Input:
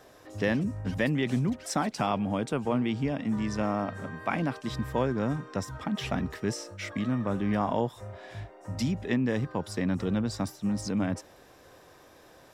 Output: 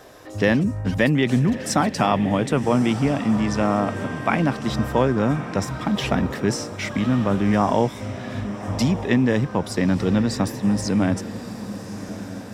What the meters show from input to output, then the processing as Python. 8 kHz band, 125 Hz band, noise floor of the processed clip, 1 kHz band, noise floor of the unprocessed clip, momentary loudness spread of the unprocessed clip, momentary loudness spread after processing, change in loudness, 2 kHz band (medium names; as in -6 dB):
+9.0 dB, +9.0 dB, -35 dBFS, +9.0 dB, -55 dBFS, 7 LU, 11 LU, +8.5 dB, +9.0 dB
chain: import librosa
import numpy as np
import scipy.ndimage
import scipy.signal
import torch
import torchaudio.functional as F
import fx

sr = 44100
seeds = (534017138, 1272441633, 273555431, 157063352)

y = fx.echo_diffused(x, sr, ms=1182, feedback_pct=45, wet_db=-12)
y = y * 10.0 ** (8.5 / 20.0)